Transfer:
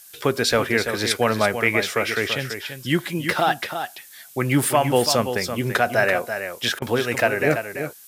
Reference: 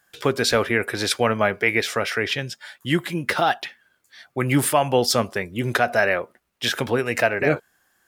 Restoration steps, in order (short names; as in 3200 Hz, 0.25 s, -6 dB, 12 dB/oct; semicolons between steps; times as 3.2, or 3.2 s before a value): interpolate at 6.79, 27 ms; noise print and reduce 23 dB; inverse comb 0.335 s -8.5 dB